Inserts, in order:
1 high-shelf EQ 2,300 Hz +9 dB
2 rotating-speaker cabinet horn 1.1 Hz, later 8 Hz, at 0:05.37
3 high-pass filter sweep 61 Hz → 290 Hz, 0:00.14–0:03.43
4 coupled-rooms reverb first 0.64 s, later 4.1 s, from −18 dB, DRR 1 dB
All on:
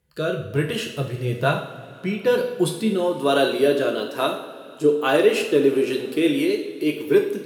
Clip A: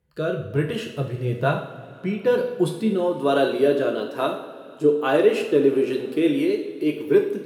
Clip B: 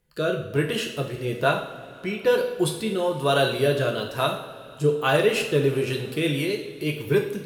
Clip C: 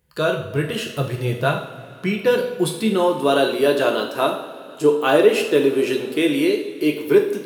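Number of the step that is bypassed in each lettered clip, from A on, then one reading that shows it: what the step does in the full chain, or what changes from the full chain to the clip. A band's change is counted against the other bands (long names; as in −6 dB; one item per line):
1, 4 kHz band −6.0 dB
3, 250 Hz band −5.0 dB
2, change in integrated loudness +2.0 LU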